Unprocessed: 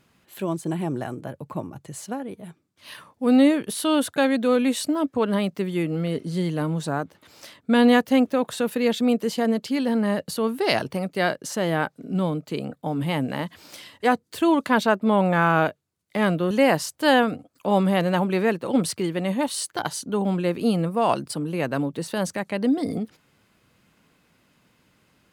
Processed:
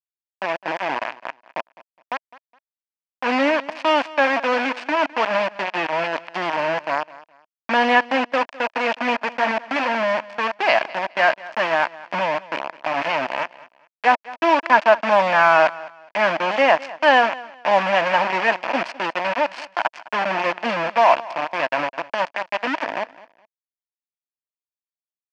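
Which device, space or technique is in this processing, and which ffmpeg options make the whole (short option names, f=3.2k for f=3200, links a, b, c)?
hand-held game console: -filter_complex "[0:a]asettb=1/sr,asplit=3[a][b][c];[a]atrim=end=21.494[d];[b]atrim=start=21.49:end=22.87,asetpts=PTS-STARTPTS,afade=t=in:d=0.004:c=qsin,afade=t=out:st=1.376:d=0.004:c=qsin,asubboost=boost=9.5:cutoff=76[e];[c]atrim=start=22.866[f];[d][e]acrossfade=d=0.004:c1=hsin:c2=qsin[g];[g][f]acrossfade=d=0.004:c1=qsin:c2=hsin,acrusher=bits=3:mix=0:aa=0.000001,highpass=410,equalizer=f=420:t=q:w=4:g=-10,equalizer=f=650:t=q:w=4:g=8,equalizer=f=960:t=q:w=4:g=8,equalizer=f=1.7k:t=q:w=4:g=6,equalizer=f=2.5k:t=q:w=4:g=7,equalizer=f=3.8k:t=q:w=4:g=-9,lowpass=f=4.3k:w=0.5412,lowpass=f=4.3k:w=1.3066,aecho=1:1:208|416:0.106|0.0275,volume=1dB"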